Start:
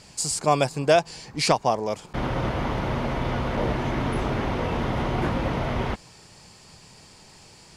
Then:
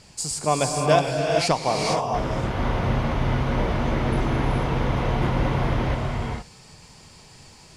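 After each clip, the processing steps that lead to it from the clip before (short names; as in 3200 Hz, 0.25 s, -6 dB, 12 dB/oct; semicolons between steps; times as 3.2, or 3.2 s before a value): low shelf 110 Hz +5 dB; non-linear reverb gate 0.49 s rising, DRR 0 dB; gain -2 dB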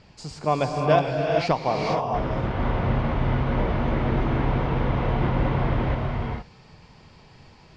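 air absorption 220 m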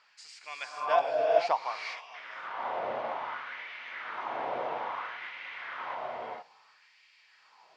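LFO high-pass sine 0.6 Hz 600–2200 Hz; gain -8 dB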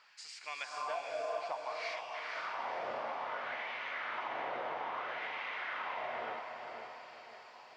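compressor 6:1, threshold -38 dBFS, peak gain reduction 19 dB; diffused feedback echo 0.497 s, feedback 47%, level -5.5 dB; gain +1 dB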